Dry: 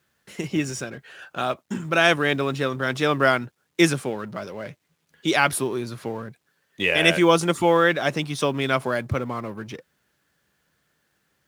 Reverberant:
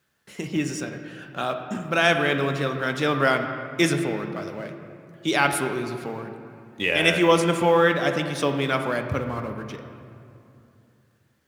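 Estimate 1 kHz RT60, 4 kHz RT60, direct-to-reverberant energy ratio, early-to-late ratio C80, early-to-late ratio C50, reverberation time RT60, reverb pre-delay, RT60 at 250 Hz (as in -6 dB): 2.7 s, 1.5 s, 5.5 dB, 8.0 dB, 7.0 dB, 2.8 s, 3 ms, 3.3 s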